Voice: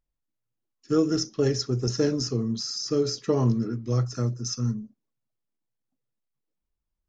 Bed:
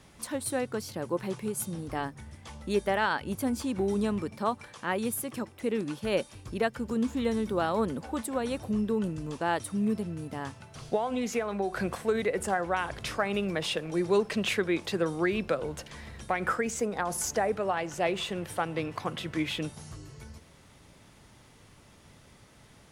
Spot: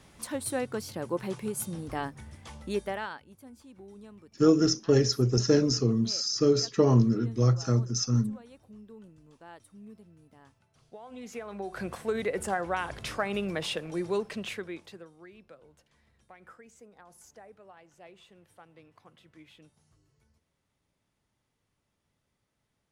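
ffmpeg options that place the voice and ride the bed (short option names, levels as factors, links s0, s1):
-filter_complex "[0:a]adelay=3500,volume=1.19[s0];[1:a]volume=8.41,afade=t=out:st=2.53:d=0.73:silence=0.1,afade=t=in:st=10.93:d=1.39:silence=0.112202,afade=t=out:st=13.66:d=1.43:silence=0.0794328[s1];[s0][s1]amix=inputs=2:normalize=0"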